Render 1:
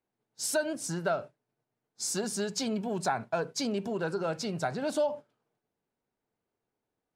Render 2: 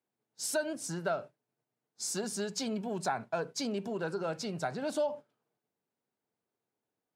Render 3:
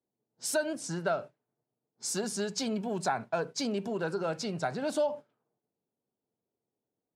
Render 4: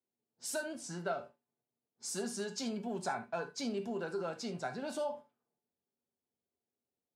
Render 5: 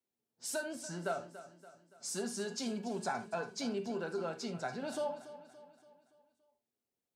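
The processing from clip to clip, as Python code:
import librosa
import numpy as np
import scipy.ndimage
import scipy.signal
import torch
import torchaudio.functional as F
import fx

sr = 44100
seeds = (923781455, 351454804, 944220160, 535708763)

y1 = scipy.signal.sosfilt(scipy.signal.butter(2, 110.0, 'highpass', fs=sr, output='sos'), x)
y1 = y1 * librosa.db_to_amplitude(-3.0)
y2 = fx.env_lowpass(y1, sr, base_hz=650.0, full_db=-32.5)
y2 = y2 * librosa.db_to_amplitude(2.5)
y3 = fx.comb_fb(y2, sr, f0_hz=79.0, decay_s=0.2, harmonics='odd', damping=0.0, mix_pct=70)
y3 = fx.rev_gated(y3, sr, seeds[0], gate_ms=100, shape='flat', drr_db=9.5)
y4 = fx.echo_feedback(y3, sr, ms=285, feedback_pct=49, wet_db=-14.5)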